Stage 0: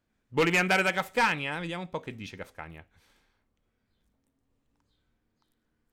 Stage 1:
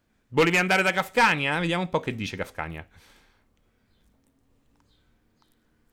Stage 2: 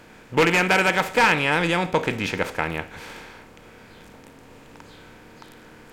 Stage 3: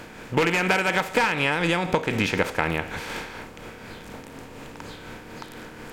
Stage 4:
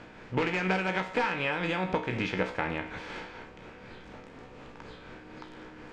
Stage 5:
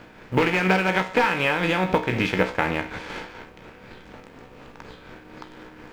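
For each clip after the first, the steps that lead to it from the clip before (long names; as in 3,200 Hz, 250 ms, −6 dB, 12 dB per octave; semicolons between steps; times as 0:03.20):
speech leveller within 4 dB 0.5 s; level +5.5 dB
compressor on every frequency bin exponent 0.6
amplitude tremolo 4.1 Hz, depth 39%; downward compressor 16 to 1, threshold −26 dBFS, peak gain reduction 13 dB; level +8 dB
high-frequency loss of the air 130 metres; tuned comb filter 62 Hz, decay 0.32 s, harmonics all, mix 80%
mu-law and A-law mismatch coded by A; level +9 dB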